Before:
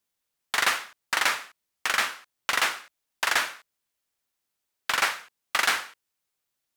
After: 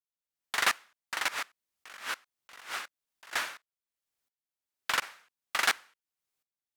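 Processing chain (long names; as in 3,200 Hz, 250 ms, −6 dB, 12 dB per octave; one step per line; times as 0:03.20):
0:01.28–0:03.33: compressor whose output falls as the input rises −37 dBFS, ratio −1
tremolo with a ramp in dB swelling 1.4 Hz, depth 21 dB
level −1.5 dB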